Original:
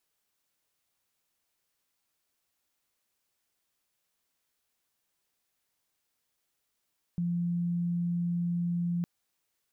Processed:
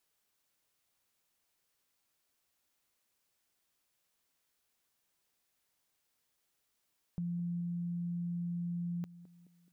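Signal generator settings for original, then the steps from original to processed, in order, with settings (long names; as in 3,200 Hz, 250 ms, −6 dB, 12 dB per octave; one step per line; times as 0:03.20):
tone sine 173 Hz −27 dBFS 1.86 s
downward compressor 1.5 to 1, threshold −47 dBFS
feedback echo with a band-pass in the loop 213 ms, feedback 58%, band-pass 300 Hz, level −14 dB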